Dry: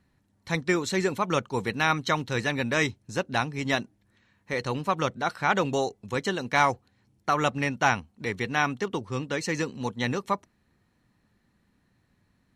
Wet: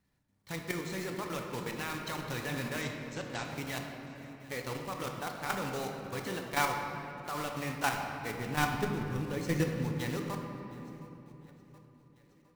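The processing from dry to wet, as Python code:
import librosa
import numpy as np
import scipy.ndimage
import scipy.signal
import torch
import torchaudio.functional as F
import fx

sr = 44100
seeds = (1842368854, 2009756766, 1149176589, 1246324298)

y = fx.block_float(x, sr, bits=3)
y = fx.ellip_lowpass(y, sr, hz=8000.0, order=4, stop_db=40, at=(2.81, 3.45))
y = fx.low_shelf(y, sr, hz=360.0, db=12.0, at=(8.38, 9.92))
y = fx.echo_feedback(y, sr, ms=717, feedback_pct=52, wet_db=-21.5)
y = fx.level_steps(y, sr, step_db=10)
y = fx.room_shoebox(y, sr, seeds[0], volume_m3=150.0, walls='hard', distance_m=0.35)
y = y * librosa.db_to_amplitude(-7.5)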